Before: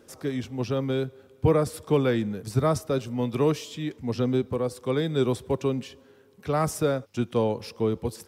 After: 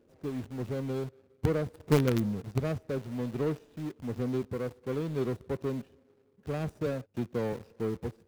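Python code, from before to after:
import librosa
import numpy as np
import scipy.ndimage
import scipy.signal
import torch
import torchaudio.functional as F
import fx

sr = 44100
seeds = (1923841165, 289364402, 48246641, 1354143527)

p1 = scipy.signal.medfilt(x, 41)
p2 = fx.low_shelf(p1, sr, hz=210.0, db=10.5, at=(1.83, 2.4), fade=0.02)
p3 = fx.quant_companded(p2, sr, bits=2)
p4 = p2 + (p3 * 10.0 ** (-11.5 / 20.0))
p5 = fx.band_squash(p4, sr, depth_pct=40, at=(6.86, 7.53))
y = p5 * 10.0 ** (-8.0 / 20.0)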